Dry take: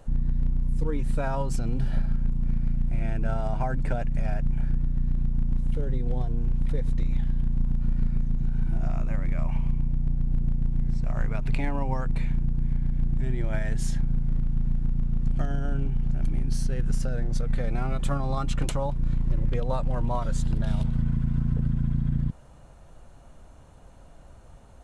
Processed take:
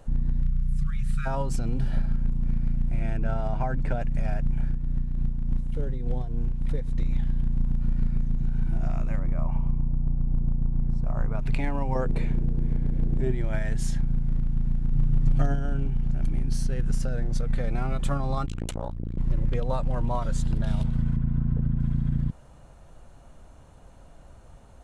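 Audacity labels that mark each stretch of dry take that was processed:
0.420000	1.260000	spectral selection erased 220–1100 Hz
3.170000	4.010000	distance through air 59 m
4.650000	7.060000	tremolo 3.4 Hz, depth 43%
9.190000	11.390000	resonant high shelf 1.5 kHz -8 dB, Q 1.5
11.950000	13.320000	peaking EQ 430 Hz +13 dB 1.1 oct
14.920000	15.540000	comb 7.3 ms, depth 96%
18.460000	19.180000	transformer saturation saturates under 230 Hz
21.160000	21.800000	low-pass 1.5 kHz 6 dB/octave

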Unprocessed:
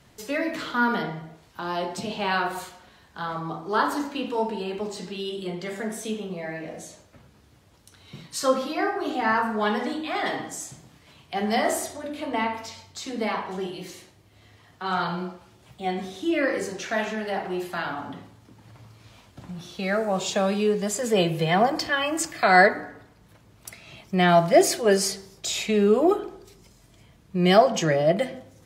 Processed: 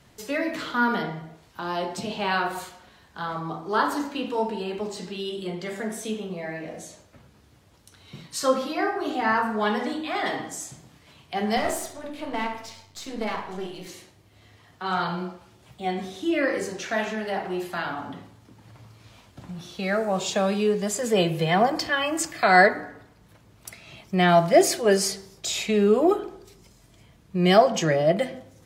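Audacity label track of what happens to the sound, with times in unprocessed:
11.570000	13.870000	partial rectifier negative side -7 dB

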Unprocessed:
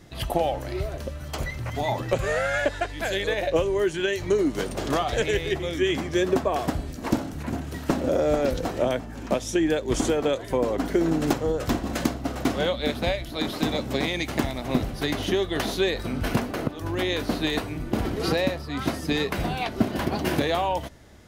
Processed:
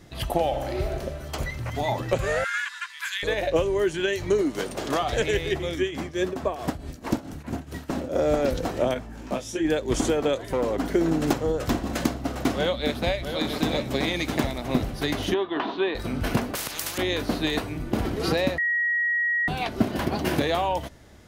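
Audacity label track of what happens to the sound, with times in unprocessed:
0.470000	1.000000	reverb throw, RT60 1.4 s, DRR 3.5 dB
2.440000	3.230000	steep high-pass 980 Hz 96 dB/octave
4.410000	5.030000	bass shelf 140 Hz -10 dB
5.750000	8.160000	tremolo triangle 4.6 Hz, depth 80%
8.940000	9.650000	detune thickener each way 18 cents
10.480000	10.930000	hard clipper -19 dBFS
12.560000	14.580000	delay 667 ms -8 dB
15.340000	15.950000	cabinet simulation 300–3100 Hz, peaks and dips at 300 Hz +6 dB, 520 Hz -7 dB, 1 kHz +9 dB, 2.1 kHz -6 dB
16.550000	16.980000	spectrum-flattening compressor 10:1
18.580000	19.480000	bleep 1.9 kHz -21 dBFS

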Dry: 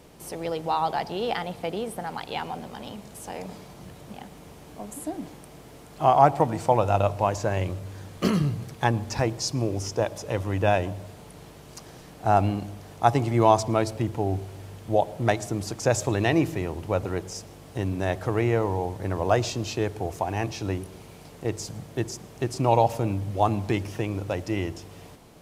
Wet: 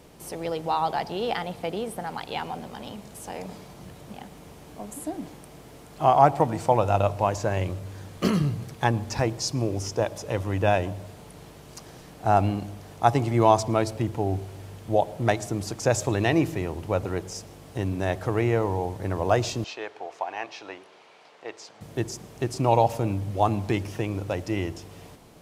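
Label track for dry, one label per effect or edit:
19.640000	21.810000	band-pass 690–3800 Hz

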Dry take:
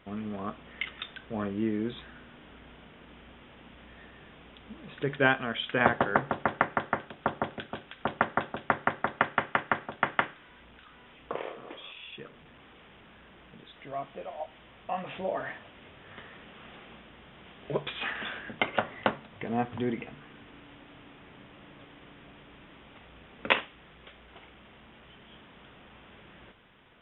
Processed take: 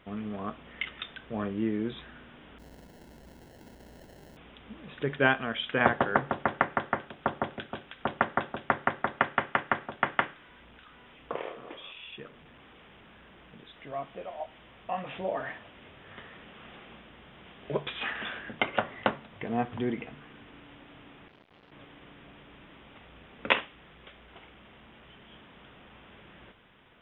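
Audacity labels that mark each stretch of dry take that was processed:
2.580000	4.370000	sample-rate reducer 1.2 kHz
21.280000	21.720000	transformer saturation saturates under 1.1 kHz

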